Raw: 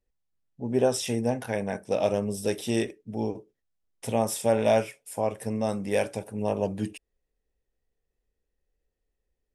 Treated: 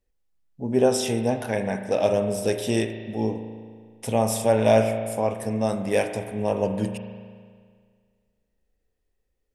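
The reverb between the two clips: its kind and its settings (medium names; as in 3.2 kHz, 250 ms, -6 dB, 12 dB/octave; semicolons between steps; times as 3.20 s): spring tank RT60 1.9 s, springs 36 ms, chirp 70 ms, DRR 7 dB; trim +3 dB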